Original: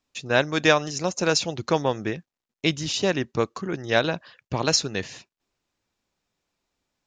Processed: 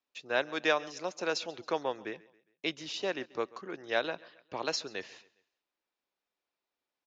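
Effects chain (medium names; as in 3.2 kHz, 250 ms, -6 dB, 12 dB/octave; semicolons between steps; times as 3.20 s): three-band isolator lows -19 dB, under 290 Hz, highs -15 dB, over 5.2 kHz; feedback delay 136 ms, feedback 43%, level -22 dB; trim -8.5 dB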